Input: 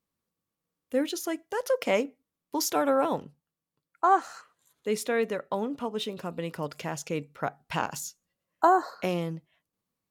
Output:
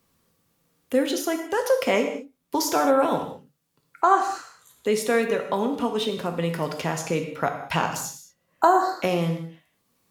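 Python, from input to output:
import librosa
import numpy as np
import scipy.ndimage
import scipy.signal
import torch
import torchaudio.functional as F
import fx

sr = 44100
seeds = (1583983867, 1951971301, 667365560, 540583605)

y = fx.rev_gated(x, sr, seeds[0], gate_ms=240, shape='falling', drr_db=4.5)
y = fx.band_squash(y, sr, depth_pct=40)
y = F.gain(torch.from_numpy(y), 4.5).numpy()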